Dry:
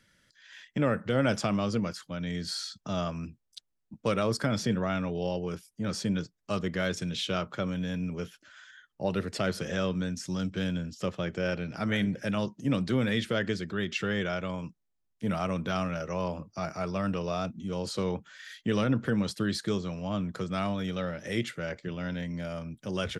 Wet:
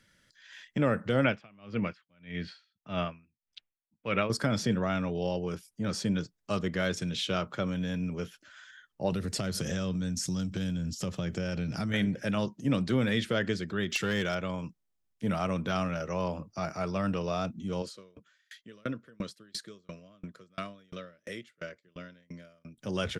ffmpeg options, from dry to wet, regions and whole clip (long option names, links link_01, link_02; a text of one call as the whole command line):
ffmpeg -i in.wav -filter_complex "[0:a]asettb=1/sr,asplit=3[link_01][link_02][link_03];[link_01]atrim=end=1.244[link_04];[link_02]atrim=start=1.24:end=4.3,asetpts=PTS-STARTPTS,afade=type=in:duration=0.004:curve=qsin,afade=type=out:start_time=3.056:duration=0.004:curve=qsin,lowpass=frequency=2500:width_type=q:width=2.8,aeval=exprs='val(0)*pow(10,-31*(0.5-0.5*cos(2*PI*1.7*n/s))/20)':channel_layout=same[link_05];[link_03]atrim=start=4.296[link_06];[link_04][link_05]acrossfade=duration=0.004:curve1=hsin:curve2=qsin[link_07];[link_07][link_06]acrossfade=duration=0.004:curve1=qsin:curve2=hsin,asettb=1/sr,asplit=3[link_08][link_09][link_10];[link_08]atrim=end=9.124[link_11];[link_09]atrim=start=9.12:end=11.94,asetpts=PTS-STARTPTS,afade=type=in:duration=0.004:curve=qsin,afade=type=out:start_time=2.816:duration=0.004:curve=qsin,bass=frequency=250:gain=9,treble=frequency=4000:gain=10,acompressor=threshold=-28dB:ratio=10:attack=3.2:release=140:knee=1:detection=peak[link_12];[link_10]atrim=start=11.936[link_13];[link_11][link_12]acrossfade=duration=0.004:curve1=hsin:curve2=qsin[link_14];[link_14][link_13]acrossfade=duration=0.004:curve1=qsin:curve2=hsin,asettb=1/sr,asplit=3[link_15][link_16][link_17];[link_15]atrim=end=13.904[link_18];[link_16]atrim=start=13.9:end=14.35,asetpts=PTS-STARTPTS,afade=type=in:duration=0.004:curve=qsin,afade=type=out:start_time=0.446:duration=0.004:curve=qsin,aemphasis=mode=production:type=50kf,volume=23dB,asoftclip=hard,volume=-23dB[link_19];[link_17]atrim=start=14.346[link_20];[link_18][link_19]acrossfade=duration=0.004:curve1=hsin:curve2=qsin[link_21];[link_21][link_20]acrossfade=duration=0.004:curve1=qsin:curve2=hsin,asettb=1/sr,asplit=3[link_22][link_23][link_24];[link_22]atrim=end=17.824[link_25];[link_23]atrim=start=17.82:end=22.78,asetpts=PTS-STARTPTS,afade=type=in:duration=0.004:curve=qsin,afade=type=out:start_time=4.956:duration=0.004:curve=qsin,asuperstop=centerf=820:order=4:qfactor=2.8,lowshelf=frequency=150:gain=-11.5,aeval=exprs='val(0)*pow(10,-34*if(lt(mod(2.9*n/s,1),2*abs(2.9)/1000),1-mod(2.9*n/s,1)/(2*abs(2.9)/1000),(mod(2.9*n/s,1)-2*abs(2.9)/1000)/(1-2*abs(2.9)/1000))/20)':channel_layout=same[link_26];[link_24]atrim=start=22.776[link_27];[link_25][link_26]acrossfade=duration=0.004:curve1=hsin:curve2=qsin[link_28];[link_28][link_27]acrossfade=duration=0.004:curve1=qsin:curve2=hsin" out.wav